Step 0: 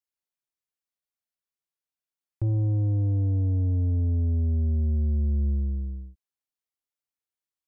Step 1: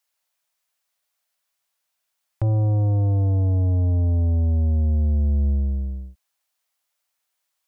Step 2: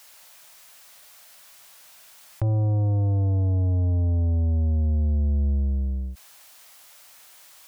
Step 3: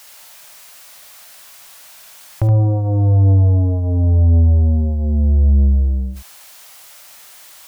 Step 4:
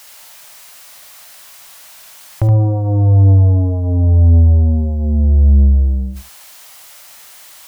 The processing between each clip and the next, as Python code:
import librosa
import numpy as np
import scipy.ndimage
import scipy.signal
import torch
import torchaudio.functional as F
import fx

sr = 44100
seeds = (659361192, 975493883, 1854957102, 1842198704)

y1 = fx.curve_eq(x, sr, hz=(200.0, 390.0, 600.0), db=(0, -3, 11))
y1 = F.gain(torch.from_numpy(y1), 4.5).numpy()
y2 = fx.env_flatten(y1, sr, amount_pct=50)
y2 = F.gain(torch.from_numpy(y2), -2.5).numpy()
y3 = y2 + 10.0 ** (-7.0 / 20.0) * np.pad(y2, (int(72 * sr / 1000.0), 0))[:len(y2)]
y3 = F.gain(torch.from_numpy(y3), 8.0).numpy()
y4 = y3 + 10.0 ** (-16.5 / 20.0) * np.pad(y3, (int(71 * sr / 1000.0), 0))[:len(y3)]
y4 = F.gain(torch.from_numpy(y4), 2.0).numpy()